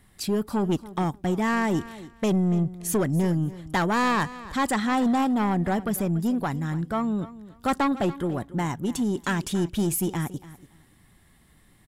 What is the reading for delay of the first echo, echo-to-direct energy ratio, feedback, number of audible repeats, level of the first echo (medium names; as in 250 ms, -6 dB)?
285 ms, -17.0 dB, 20%, 2, -17.0 dB